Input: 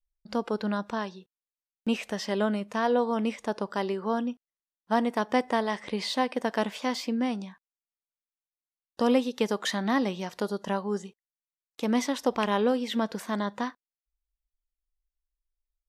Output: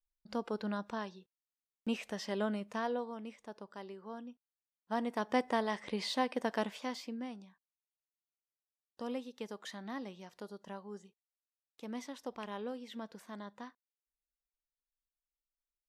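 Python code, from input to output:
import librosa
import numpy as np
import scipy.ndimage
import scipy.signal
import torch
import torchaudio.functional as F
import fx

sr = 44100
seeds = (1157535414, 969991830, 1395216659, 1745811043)

y = fx.gain(x, sr, db=fx.line((2.76, -8.0), (3.2, -17.5), (4.26, -17.5), (5.38, -6.0), (6.52, -6.0), (7.44, -16.5)))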